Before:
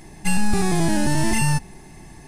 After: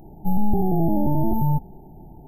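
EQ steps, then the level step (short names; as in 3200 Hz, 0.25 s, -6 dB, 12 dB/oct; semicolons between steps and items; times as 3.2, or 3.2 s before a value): brick-wall FIR band-stop 930–12000 Hz; 0.0 dB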